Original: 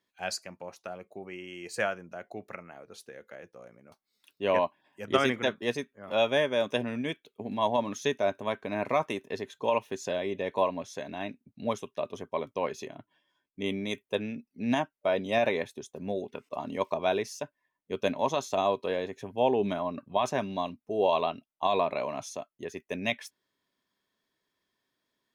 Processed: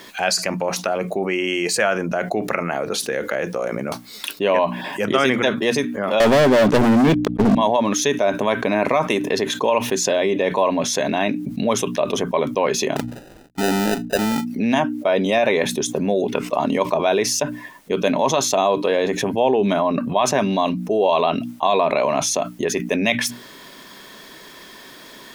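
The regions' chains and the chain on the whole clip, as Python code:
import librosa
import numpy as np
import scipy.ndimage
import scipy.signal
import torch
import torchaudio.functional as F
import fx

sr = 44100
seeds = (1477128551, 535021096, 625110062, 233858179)

y = fx.chain(x, sr, fx.tilt_eq(slope=-4.0),
    fx.leveller(passes=5), at=(6.2, 7.55))
y = fx.chain(y, sr, fx.median_filter(points=25),
    fx.sample_hold(seeds[0], rate_hz=1100.0, jitter_pct=0), at=(12.96, 14.46))
y = fx.peak_eq(y, sr, hz=95.0, db=-12.0, octaves=0.44)
y = fx.hum_notches(y, sr, base_hz=60, count=5)
y = fx.env_flatten(y, sr, amount_pct=70)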